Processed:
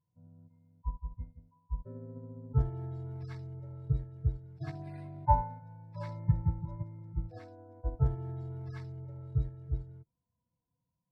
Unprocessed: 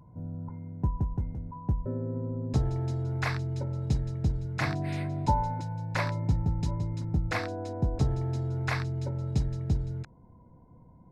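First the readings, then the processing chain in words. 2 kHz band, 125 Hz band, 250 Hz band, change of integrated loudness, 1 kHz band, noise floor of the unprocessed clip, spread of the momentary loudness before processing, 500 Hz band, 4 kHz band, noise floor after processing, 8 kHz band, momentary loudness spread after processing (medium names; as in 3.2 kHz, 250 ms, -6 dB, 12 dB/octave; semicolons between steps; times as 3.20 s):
-21.5 dB, -6.0 dB, -9.5 dB, -5.0 dB, -2.0 dB, -55 dBFS, 7 LU, -8.5 dB, under -20 dB, -85 dBFS, no reading, 15 LU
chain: harmonic-percussive separation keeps harmonic; upward expansion 2.5:1, over -44 dBFS; trim +3.5 dB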